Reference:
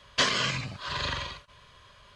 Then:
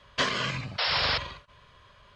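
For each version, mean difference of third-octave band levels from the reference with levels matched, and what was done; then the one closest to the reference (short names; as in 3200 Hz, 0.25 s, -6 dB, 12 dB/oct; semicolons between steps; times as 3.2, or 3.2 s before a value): 3.5 dB: high shelf 4800 Hz -11 dB; painted sound noise, 0.78–1.18, 430–5500 Hz -27 dBFS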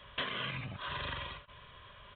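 8.5 dB: compressor 2.5:1, threshold -40 dBFS, peak gain reduction 13.5 dB; downsampling 8000 Hz; gain +1 dB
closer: first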